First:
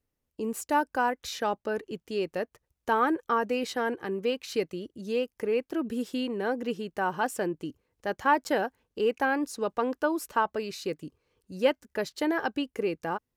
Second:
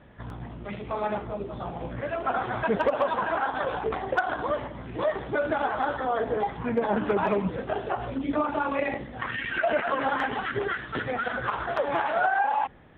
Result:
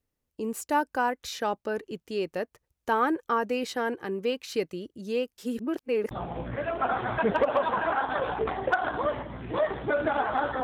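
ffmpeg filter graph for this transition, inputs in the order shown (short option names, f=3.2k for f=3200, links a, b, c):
-filter_complex "[0:a]apad=whole_dur=10.63,atrim=end=10.63,asplit=2[a][b];[a]atrim=end=5.382[c];[b]atrim=start=5.378:end=6.112,asetpts=PTS-STARTPTS,areverse[d];[1:a]atrim=start=1.558:end=6.08[e];[c][d]acrossfade=d=0.004:c1=hsin:c2=hsin[f];[f][e]acrossfade=d=0.004:c1=hsin:c2=hsin"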